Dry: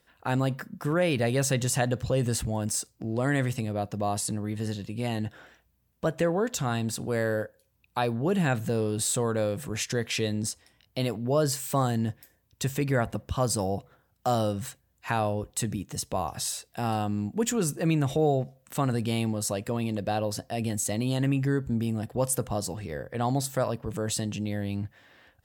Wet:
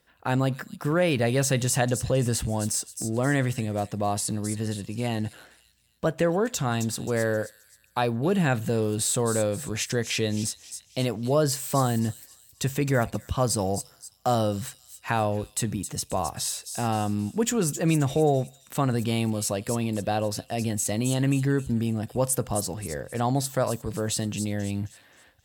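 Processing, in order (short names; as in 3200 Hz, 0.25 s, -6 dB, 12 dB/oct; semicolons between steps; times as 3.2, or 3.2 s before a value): in parallel at -10.5 dB: crossover distortion -45.5 dBFS; on the sum: thin delay 0.265 s, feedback 39%, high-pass 5100 Hz, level -6 dB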